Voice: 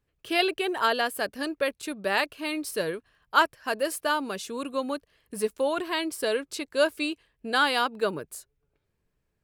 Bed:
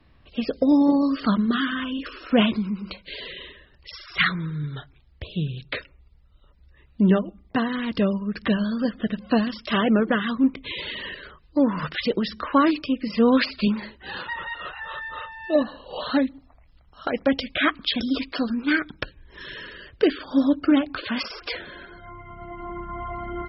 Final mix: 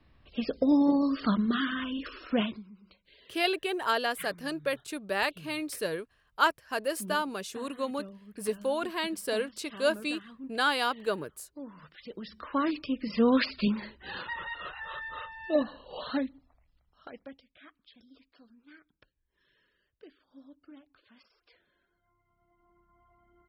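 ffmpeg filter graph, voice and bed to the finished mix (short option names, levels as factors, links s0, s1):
-filter_complex "[0:a]adelay=3050,volume=0.668[s0];[1:a]volume=4.22,afade=t=out:st=2.2:d=0.44:silence=0.125893,afade=t=in:st=12.02:d=1.14:silence=0.125893,afade=t=out:st=15.46:d=1.95:silence=0.0398107[s1];[s0][s1]amix=inputs=2:normalize=0"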